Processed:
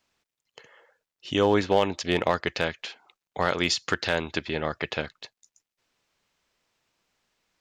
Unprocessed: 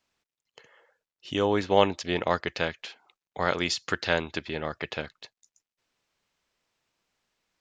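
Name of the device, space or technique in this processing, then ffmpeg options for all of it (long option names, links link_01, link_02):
limiter into clipper: -af "alimiter=limit=-11.5dB:level=0:latency=1:release=169,asoftclip=type=hard:threshold=-13.5dB,volume=3.5dB"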